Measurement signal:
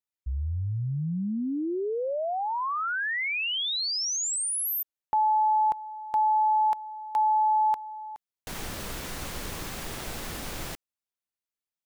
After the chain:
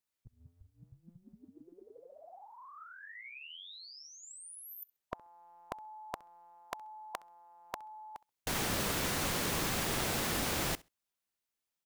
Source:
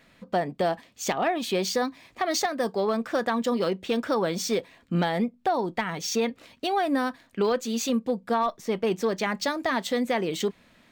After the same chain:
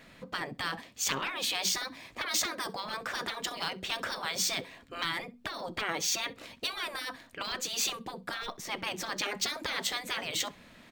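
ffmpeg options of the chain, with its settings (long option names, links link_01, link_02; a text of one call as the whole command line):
ffmpeg -i in.wav -af "afftfilt=real='re*lt(hypot(re,im),0.1)':imag='im*lt(hypot(re,im),0.1)':win_size=1024:overlap=0.75,aecho=1:1:66|132:0.0668|0.0107,volume=3.5dB" out.wav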